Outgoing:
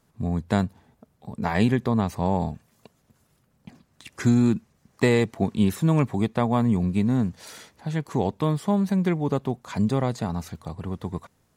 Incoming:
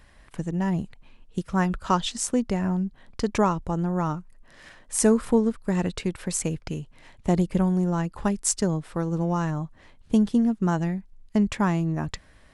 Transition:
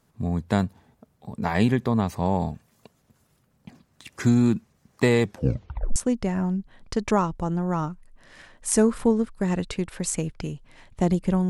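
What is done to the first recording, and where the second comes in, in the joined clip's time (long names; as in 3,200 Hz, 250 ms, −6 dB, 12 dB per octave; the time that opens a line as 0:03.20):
outgoing
0:05.23: tape stop 0.73 s
0:05.96: continue with incoming from 0:02.23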